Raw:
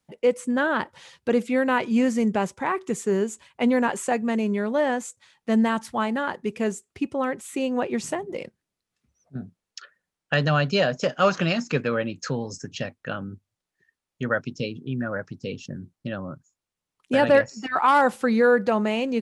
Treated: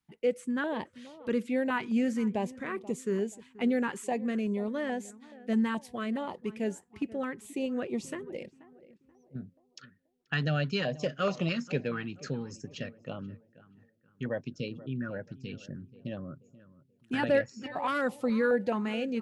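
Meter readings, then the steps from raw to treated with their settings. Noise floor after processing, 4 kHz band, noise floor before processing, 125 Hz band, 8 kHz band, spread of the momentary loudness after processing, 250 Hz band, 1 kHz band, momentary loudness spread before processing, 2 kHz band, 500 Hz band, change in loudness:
-70 dBFS, -8.0 dB, under -85 dBFS, -6.0 dB, -10.5 dB, 14 LU, -6.5 dB, -12.0 dB, 15 LU, -9.0 dB, -8.5 dB, -8.0 dB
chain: peaking EQ 7 kHz -5 dB 1.5 oct; on a send: filtered feedback delay 482 ms, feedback 40%, low-pass 1.6 kHz, level -18 dB; on the sum: step-sequenced notch 4.7 Hz 560–1600 Hz; trim -6 dB

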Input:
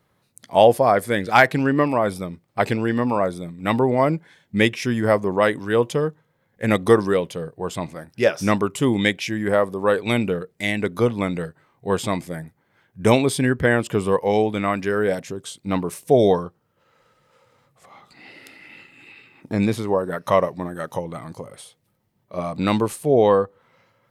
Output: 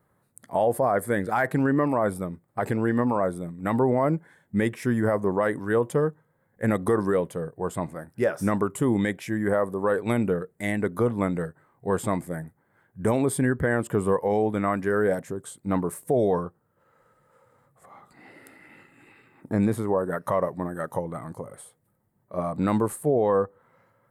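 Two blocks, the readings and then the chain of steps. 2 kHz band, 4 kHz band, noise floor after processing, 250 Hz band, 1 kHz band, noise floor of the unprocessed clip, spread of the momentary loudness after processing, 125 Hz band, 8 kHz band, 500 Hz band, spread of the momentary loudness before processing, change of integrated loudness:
-7.5 dB, -17.0 dB, -69 dBFS, -3.0 dB, -6.0 dB, -67 dBFS, 9 LU, -3.0 dB, -4.0 dB, -5.0 dB, 14 LU, -5.0 dB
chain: high-order bell 3.8 kHz -13 dB; peak limiter -12 dBFS, peak gain reduction 10 dB; trim -1.5 dB

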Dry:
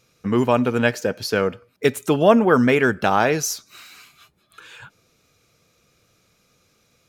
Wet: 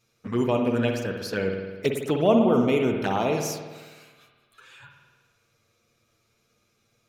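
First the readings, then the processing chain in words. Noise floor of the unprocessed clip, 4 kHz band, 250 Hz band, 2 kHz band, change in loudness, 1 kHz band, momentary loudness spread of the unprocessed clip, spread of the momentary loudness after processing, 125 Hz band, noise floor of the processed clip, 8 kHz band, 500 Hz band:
-64 dBFS, -6.0 dB, -3.5 dB, -10.5 dB, -5.0 dB, -7.5 dB, 9 LU, 11 LU, -3.5 dB, -70 dBFS, -9.5 dB, -4.5 dB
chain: touch-sensitive flanger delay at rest 8.9 ms, full sweep at -14.5 dBFS; spring tank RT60 1.4 s, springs 52 ms, chirp 35 ms, DRR 3 dB; trim -5 dB

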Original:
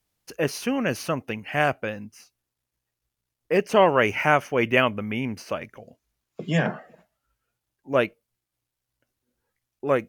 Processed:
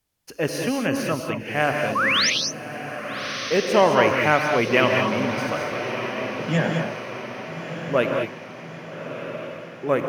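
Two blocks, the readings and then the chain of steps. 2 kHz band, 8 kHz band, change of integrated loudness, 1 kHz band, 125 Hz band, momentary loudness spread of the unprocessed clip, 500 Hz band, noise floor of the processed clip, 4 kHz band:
+4.0 dB, +9.5 dB, +1.5 dB, +3.0 dB, +2.5 dB, 14 LU, +2.5 dB, -39 dBFS, +9.5 dB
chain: painted sound rise, 1.95–2.30 s, 1–6.5 kHz -21 dBFS; on a send: echo that smears into a reverb 1258 ms, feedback 53%, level -9 dB; on the sum: gated-style reverb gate 240 ms rising, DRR 2.5 dB

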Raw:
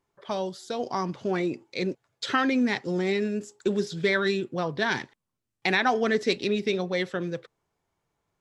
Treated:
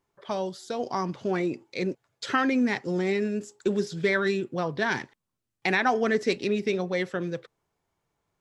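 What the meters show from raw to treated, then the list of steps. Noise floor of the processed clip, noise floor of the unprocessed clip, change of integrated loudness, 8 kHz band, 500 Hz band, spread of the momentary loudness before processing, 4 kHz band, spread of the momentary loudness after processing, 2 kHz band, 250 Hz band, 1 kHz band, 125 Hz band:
-84 dBFS, -84 dBFS, 0.0 dB, -0.5 dB, 0.0 dB, 9 LU, -4.0 dB, 9 LU, -0.5 dB, 0.0 dB, 0.0 dB, 0.0 dB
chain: dynamic bell 3.7 kHz, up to -6 dB, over -47 dBFS, Q 2.5

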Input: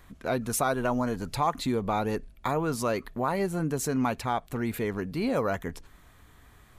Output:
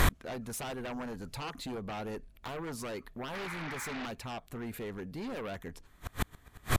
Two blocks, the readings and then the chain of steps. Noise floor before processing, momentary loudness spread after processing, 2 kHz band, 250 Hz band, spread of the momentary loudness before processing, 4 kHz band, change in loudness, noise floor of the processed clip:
-56 dBFS, 5 LU, -3.0 dB, -10.0 dB, 5 LU, -1.5 dB, -10.5 dB, -60 dBFS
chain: painted sound noise, 3.33–4.06 s, 800–2500 Hz -32 dBFS; sine folder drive 11 dB, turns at -13.5 dBFS; inverted gate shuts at -30 dBFS, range -38 dB; trim +16.5 dB

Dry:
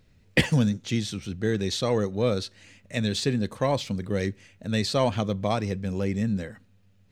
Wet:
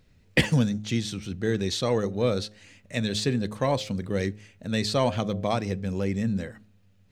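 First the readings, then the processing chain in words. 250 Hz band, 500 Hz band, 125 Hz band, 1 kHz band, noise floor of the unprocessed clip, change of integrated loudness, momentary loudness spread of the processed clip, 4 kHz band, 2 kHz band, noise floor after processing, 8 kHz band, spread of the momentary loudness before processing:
-0.5 dB, -0.5 dB, -0.5 dB, 0.0 dB, -60 dBFS, -0.5 dB, 8 LU, 0.0 dB, 0.0 dB, -60 dBFS, 0.0 dB, 8 LU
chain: de-hum 105.5 Hz, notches 7

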